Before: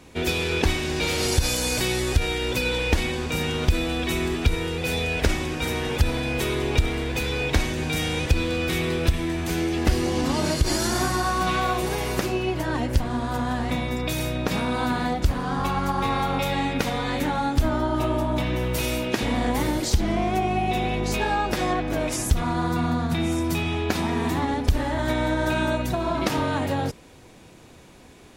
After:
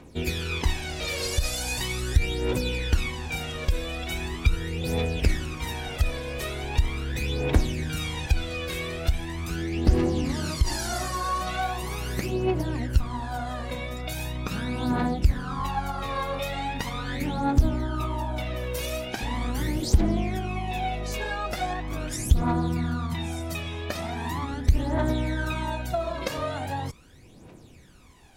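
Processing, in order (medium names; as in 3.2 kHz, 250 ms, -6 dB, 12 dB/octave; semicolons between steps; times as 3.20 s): 9.49–10.29 s: treble shelf 9.4 kHz -10.5 dB; phaser 0.4 Hz, delay 1.9 ms, feedback 67%; trim -7.5 dB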